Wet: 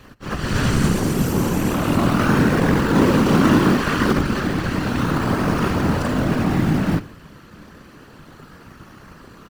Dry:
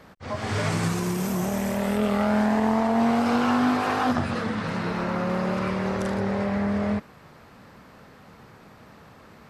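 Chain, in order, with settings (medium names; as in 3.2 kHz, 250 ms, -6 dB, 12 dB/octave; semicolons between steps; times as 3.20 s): comb filter that takes the minimum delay 0.69 ms; feedback delay 95 ms, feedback 39%, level -19 dB; in parallel at -7.5 dB: decimation with a swept rate 22×, swing 100% 0.31 Hz; on the sum: whisper effect; trim +5 dB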